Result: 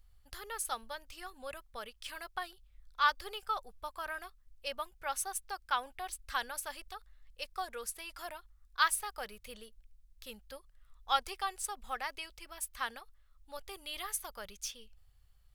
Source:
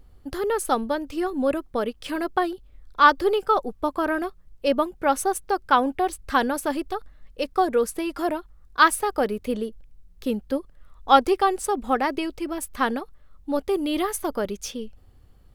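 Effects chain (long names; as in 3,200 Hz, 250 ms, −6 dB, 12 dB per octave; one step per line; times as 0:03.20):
guitar amp tone stack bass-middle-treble 10-0-10
level −5 dB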